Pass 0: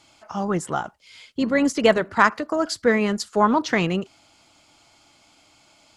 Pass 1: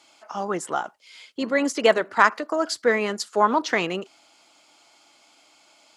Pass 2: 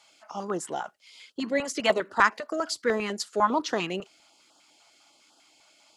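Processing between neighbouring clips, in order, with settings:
HPF 330 Hz 12 dB/oct
stepped notch 10 Hz 310–2200 Hz; gain -2.5 dB

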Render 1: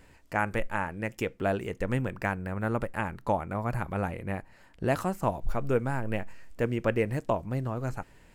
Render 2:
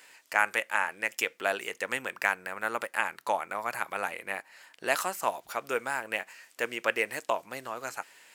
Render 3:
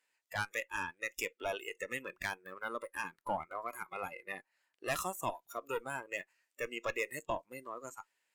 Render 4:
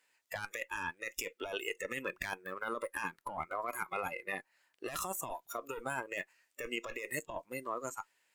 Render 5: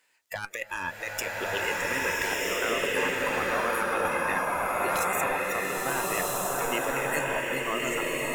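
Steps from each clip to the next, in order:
HPF 380 Hz 12 dB/oct; tilt shelf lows -9 dB; gain +2 dB
tube stage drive 26 dB, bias 0.75; spectral noise reduction 20 dB; gain -1 dB
negative-ratio compressor -41 dBFS, ratio -1; gain +3 dB
bloom reverb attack 1.32 s, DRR -6 dB; gain +5.5 dB

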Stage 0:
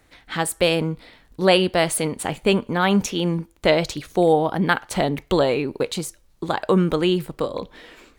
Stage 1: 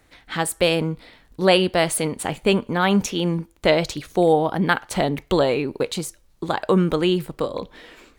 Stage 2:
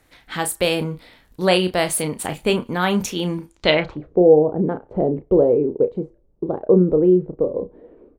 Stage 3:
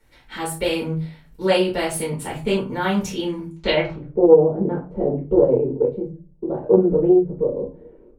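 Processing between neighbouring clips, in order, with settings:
nothing audible
doubler 33 ms -9.5 dB; low-pass sweep 14000 Hz -> 460 Hz, 3.43–4.09; gain -1 dB
reverb RT60 0.30 s, pre-delay 4 ms, DRR -6 dB; Doppler distortion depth 0.14 ms; gain -11.5 dB

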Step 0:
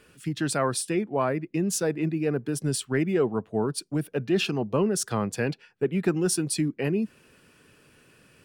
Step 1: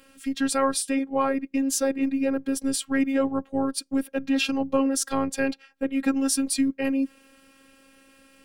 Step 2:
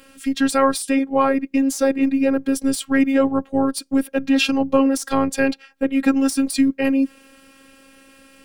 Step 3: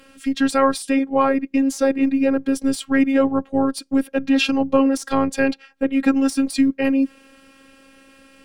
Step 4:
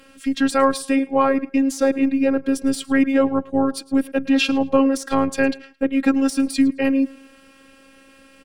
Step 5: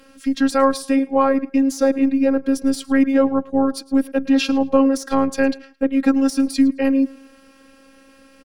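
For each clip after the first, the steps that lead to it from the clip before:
robotiser 270 Hz; gain +4.5 dB
de-esser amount 40%; gain +6.5 dB
high shelf 8900 Hz -9.5 dB
feedback echo 0.109 s, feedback 26%, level -21.5 dB
comb 3.9 ms, depth 36%; gain -1 dB

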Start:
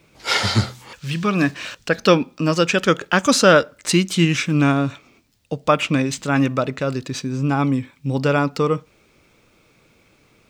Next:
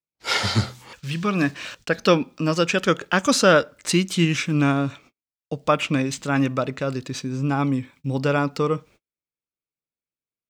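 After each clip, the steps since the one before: gate -44 dBFS, range -42 dB; gain -3 dB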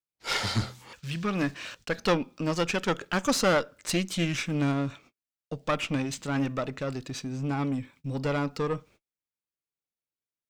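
one diode to ground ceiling -21 dBFS; gain -4.5 dB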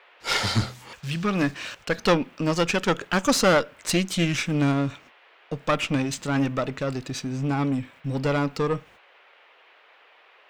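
band noise 410–2900 Hz -60 dBFS; gain +4.5 dB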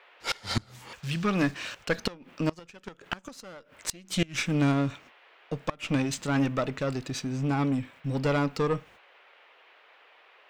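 flipped gate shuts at -12 dBFS, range -25 dB; gain -2 dB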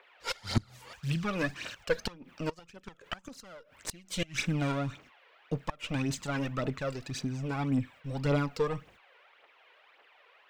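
phaser 1.8 Hz, delay 2.2 ms, feedback 58%; gain -5.5 dB

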